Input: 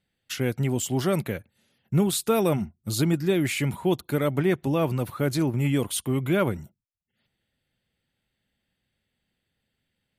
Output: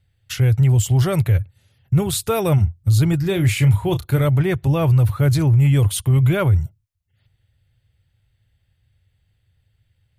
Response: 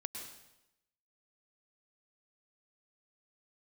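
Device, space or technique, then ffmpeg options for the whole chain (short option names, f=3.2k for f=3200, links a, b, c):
car stereo with a boomy subwoofer: -filter_complex "[0:a]lowshelf=f=150:t=q:w=3:g=13,alimiter=limit=-13dB:level=0:latency=1:release=11,asettb=1/sr,asplit=3[a][b][c];[a]atrim=end=3.214[d];[b]atrim=start=3.21:end=4.25,asetpts=PTS-STARTPTS,afade=t=in:d=0.004:c=qsin,afade=t=out:st=1.036:d=0.004:c=qsin,asplit=2[e][f];[f]adelay=30,volume=-10dB[g];[e][g]amix=inputs=2:normalize=0,atrim=end_sample=45864[h];[c]atrim=start=4.246[i];[d][h]acrossfade=d=0.004:c1=hsin:c2=qsin[j];[j][i]acrossfade=d=0.004:c1=qsin:c2=hsin,volume=4dB"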